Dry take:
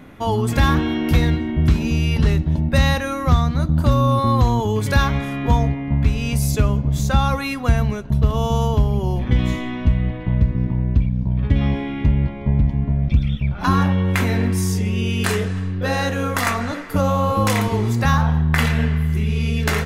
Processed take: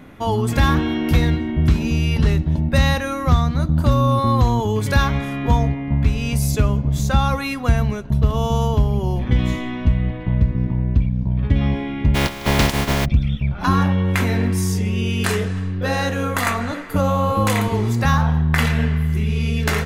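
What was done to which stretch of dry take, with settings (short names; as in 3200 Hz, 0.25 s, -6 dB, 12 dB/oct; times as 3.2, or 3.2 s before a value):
12.14–13.04 spectral contrast lowered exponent 0.35
16.25–17.75 bell 5400 Hz -6.5 dB 0.24 oct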